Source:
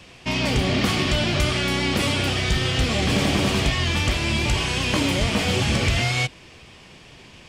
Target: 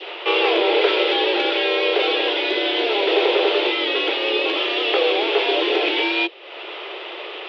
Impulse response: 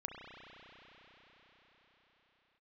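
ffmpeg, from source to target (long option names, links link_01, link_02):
-af "acompressor=mode=upward:threshold=-28dB:ratio=2.5,highpass=frequency=150:width_type=q:width=0.5412,highpass=frequency=150:width_type=q:width=1.307,lowpass=frequency=3500:width_type=q:width=0.5176,lowpass=frequency=3500:width_type=q:width=0.7071,lowpass=frequency=3500:width_type=q:width=1.932,afreqshift=210,adynamicequalizer=threshold=0.0126:dfrequency=1200:dqfactor=0.71:tfrequency=1200:tqfactor=0.71:attack=5:release=100:ratio=0.375:range=3.5:mode=cutabove:tftype=bell,volume=7dB"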